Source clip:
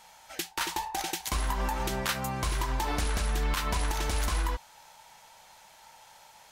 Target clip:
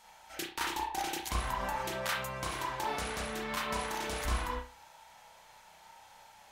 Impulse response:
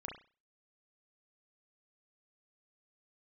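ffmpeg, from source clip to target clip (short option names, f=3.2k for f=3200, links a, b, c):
-filter_complex "[0:a]asettb=1/sr,asplit=3[a][b][c];[a]atrim=end=1.724[d];[b]atrim=start=1.72:end=4.25,asetpts=PTS-STARTPTS,afade=t=in:d=0.004:c=qsin,afade=t=out:st=2.526:d=0.004:c=qsin,highpass=f=220:p=1[e];[c]atrim=start=4.246[f];[d][e]acrossfade=d=0.004:c1=hsin:c2=qsin[g];[g][f]acrossfade=d=0.004:c1=qsin:c2=hsin[h];[1:a]atrim=start_sample=2205[i];[h][i]afir=irnorm=-1:irlink=0"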